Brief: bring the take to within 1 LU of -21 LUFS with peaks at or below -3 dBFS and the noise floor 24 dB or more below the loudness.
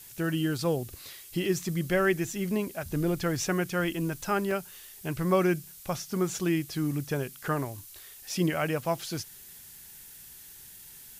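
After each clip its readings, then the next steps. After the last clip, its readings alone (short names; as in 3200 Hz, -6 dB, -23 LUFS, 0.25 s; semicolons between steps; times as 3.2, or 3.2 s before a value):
dropouts 1; longest dropout 2.3 ms; noise floor -49 dBFS; noise floor target -54 dBFS; loudness -30.0 LUFS; peak -12.5 dBFS; loudness target -21.0 LUFS
-> interpolate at 4.51, 2.3 ms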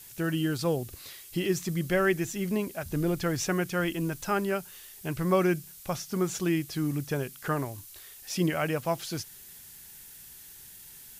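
dropouts 0; noise floor -49 dBFS; noise floor target -54 dBFS
-> denoiser 6 dB, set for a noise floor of -49 dBFS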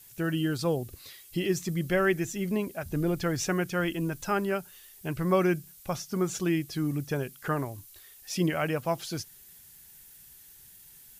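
noise floor -53 dBFS; noise floor target -54 dBFS
-> denoiser 6 dB, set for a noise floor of -53 dBFS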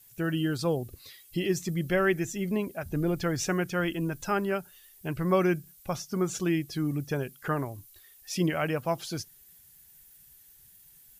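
noise floor -56 dBFS; loudness -30.0 LUFS; peak -12.5 dBFS; loudness target -21.0 LUFS
-> gain +9 dB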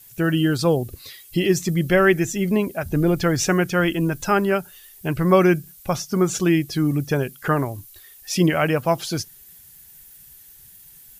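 loudness -21.0 LUFS; peak -3.5 dBFS; noise floor -47 dBFS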